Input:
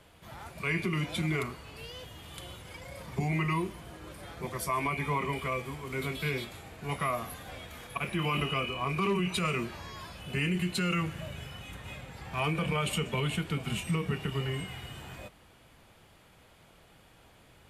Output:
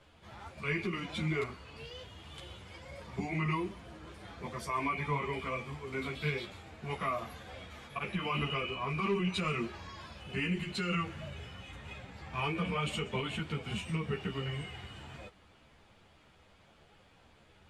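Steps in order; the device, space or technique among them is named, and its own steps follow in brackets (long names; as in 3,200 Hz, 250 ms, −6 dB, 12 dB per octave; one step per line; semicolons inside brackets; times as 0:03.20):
string-machine ensemble chorus (string-ensemble chorus; low-pass filter 6,400 Hz 12 dB per octave)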